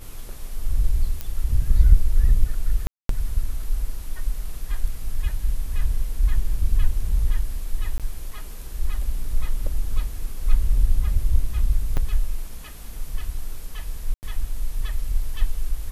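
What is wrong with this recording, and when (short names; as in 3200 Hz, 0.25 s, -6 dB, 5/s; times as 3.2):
1.21 pop -14 dBFS
2.87–3.09 gap 0.223 s
7.98–8 gap 17 ms
11.97–11.98 gap 7.1 ms
14.14–14.23 gap 89 ms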